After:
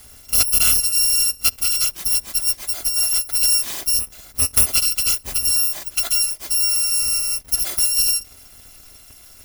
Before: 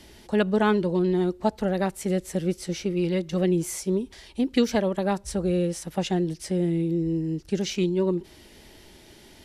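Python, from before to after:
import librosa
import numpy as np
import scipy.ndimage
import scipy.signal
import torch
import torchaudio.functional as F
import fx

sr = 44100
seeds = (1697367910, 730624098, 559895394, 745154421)

y = fx.bit_reversed(x, sr, seeds[0], block=256)
y = y * 10.0 ** (5.5 / 20.0)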